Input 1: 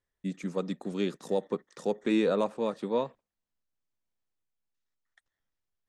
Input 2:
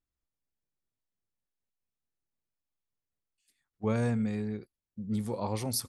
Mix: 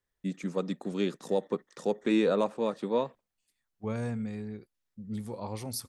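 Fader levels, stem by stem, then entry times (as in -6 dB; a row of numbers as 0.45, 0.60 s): +0.5, -4.5 dB; 0.00, 0.00 s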